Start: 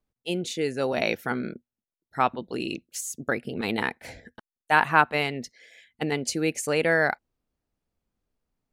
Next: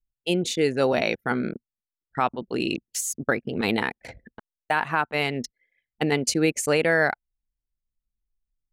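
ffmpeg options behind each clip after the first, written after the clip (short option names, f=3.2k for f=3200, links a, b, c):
-af "anlmdn=0.631,alimiter=limit=-15dB:level=0:latency=1:release=432,volume=5dB"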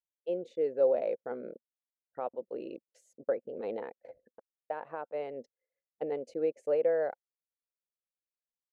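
-af "bandpass=f=530:t=q:w=5.8:csg=0"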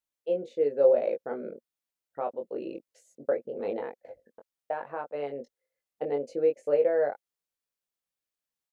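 -filter_complex "[0:a]asplit=2[a][b];[b]adelay=21,volume=-4.5dB[c];[a][c]amix=inputs=2:normalize=0,volume=3dB"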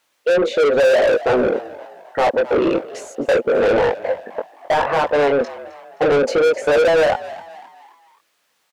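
-filter_complex "[0:a]asplit=2[a][b];[b]highpass=f=720:p=1,volume=36dB,asoftclip=type=tanh:threshold=-10.5dB[c];[a][c]amix=inputs=2:normalize=0,lowpass=f=2.3k:p=1,volume=-6dB,asplit=5[d][e][f][g][h];[e]adelay=262,afreqshift=84,volume=-17.5dB[i];[f]adelay=524,afreqshift=168,volume=-24.8dB[j];[g]adelay=786,afreqshift=252,volume=-32.2dB[k];[h]adelay=1048,afreqshift=336,volume=-39.5dB[l];[d][i][j][k][l]amix=inputs=5:normalize=0,volume=3dB"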